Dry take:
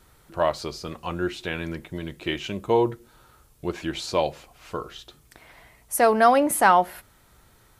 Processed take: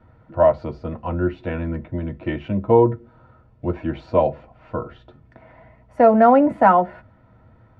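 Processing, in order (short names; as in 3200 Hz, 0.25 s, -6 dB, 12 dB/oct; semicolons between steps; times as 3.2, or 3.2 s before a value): LPF 1000 Hz 12 dB/oct; reverb, pre-delay 3 ms, DRR 5.5 dB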